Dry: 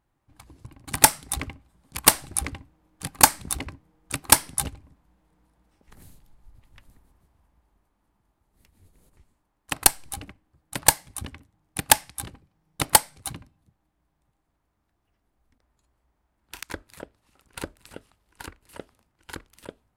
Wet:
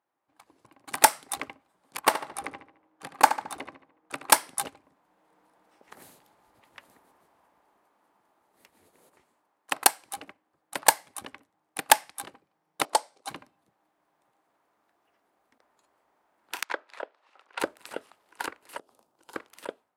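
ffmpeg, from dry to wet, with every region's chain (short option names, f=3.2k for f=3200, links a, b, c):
-filter_complex "[0:a]asettb=1/sr,asplit=3[a][b][c];[a]atrim=end=2.004[d];[b]atrim=start=2:end=4.3,asetpts=PTS-STARTPTS,afade=t=in:d=0.004:c=qsin,afade=t=out:st=2.296:d=0.004:c=qsin,highshelf=f=3.8k:g=-11.5,asplit=2[e][f];[f]adelay=73,lowpass=f=4.9k:p=1,volume=-11dB,asplit=2[g][h];[h]adelay=73,lowpass=f=4.9k:p=1,volume=0.46,asplit=2[i][j];[j]adelay=73,lowpass=f=4.9k:p=1,volume=0.46,asplit=2[k][l];[l]adelay=73,lowpass=f=4.9k:p=1,volume=0.46,asplit=2[m][n];[n]adelay=73,lowpass=f=4.9k:p=1,volume=0.46[o];[e][g][i][k][m][o]amix=inputs=6:normalize=0,atrim=end_sample=101430[p];[c]atrim=start=4.296[q];[d][p]acrossfade=d=0.004:c1=hsin:c2=qsin[r];[r][q]acrossfade=d=0.004:c1=qsin:c2=hsin,asettb=1/sr,asplit=3[s][t][u];[s]atrim=end=12.854[v];[t]atrim=start=12.85:end=13.28,asetpts=PTS-STARTPTS,afade=t=in:d=0.004:c=qsin,afade=t=out:st=0.426:d=0.004:c=qsin,highpass=390,lowpass=5.6k,equalizer=f=1.9k:w=0.61:g=-15[w];[u]atrim=start=13.276[x];[v][w]acrossfade=d=0.004:c1=hsin:c2=qsin[y];[y][x]acrossfade=d=0.004:c1=qsin:c2=hsin,asettb=1/sr,asplit=3[z][aa][ab];[z]atrim=end=16.644[ac];[aa]atrim=start=16.64:end=17.6,asetpts=PTS-STARTPTS,afade=t=in:d=0.004:c=qsin,afade=t=out:st=0.956:d=0.004:c=qsin,aeval=exprs='if(lt(val(0),0),0.708*val(0),val(0))':c=same,highpass=510,lowpass=4.1k[ad];[ab]atrim=start=17.596[ae];[ac][ad]acrossfade=d=0.004:c1=hsin:c2=qsin[af];[af][ae]acrossfade=d=0.004:c1=qsin:c2=hsin,asettb=1/sr,asplit=3[ag][ah][ai];[ag]atrim=end=18.784[aj];[ah]atrim=start=18.78:end=19.35,asetpts=PTS-STARTPTS,afade=t=in:d=0.004:c=qsin,afade=t=out:st=0.566:d=0.004:c=qsin,equalizer=f=2k:w=1.1:g=-14.5,acompressor=threshold=-51dB:ratio=5:attack=3.2:release=140:knee=1:detection=peak[ak];[ai]atrim=start=19.346[al];[aj][ak]acrossfade=d=0.004:c1=hsin:c2=qsin[am];[am][al]acrossfade=d=0.004:c1=qsin:c2=hsin,highpass=490,highshelf=f=2.1k:g=-9,dynaudnorm=f=490:g=3:m=12dB,volume=-1dB"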